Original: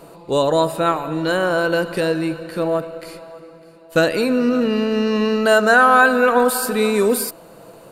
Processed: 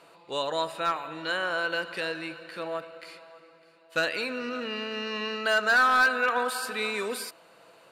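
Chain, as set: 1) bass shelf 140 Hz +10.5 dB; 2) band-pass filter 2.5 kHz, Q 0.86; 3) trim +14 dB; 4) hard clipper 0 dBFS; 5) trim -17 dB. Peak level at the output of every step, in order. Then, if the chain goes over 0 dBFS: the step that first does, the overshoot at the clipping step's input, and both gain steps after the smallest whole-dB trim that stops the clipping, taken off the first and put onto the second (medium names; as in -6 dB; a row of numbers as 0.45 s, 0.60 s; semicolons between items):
-1.5 dBFS, -6.5 dBFS, +7.5 dBFS, 0.0 dBFS, -17.0 dBFS; step 3, 7.5 dB; step 3 +6 dB, step 5 -9 dB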